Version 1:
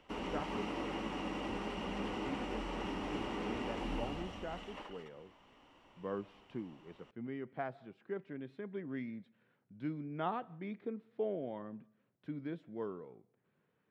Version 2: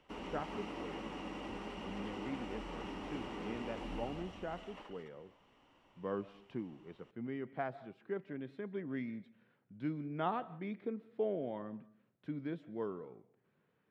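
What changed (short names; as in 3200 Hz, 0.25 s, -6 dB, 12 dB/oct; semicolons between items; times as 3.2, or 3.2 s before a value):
speech: send +8.0 dB; background -4.5 dB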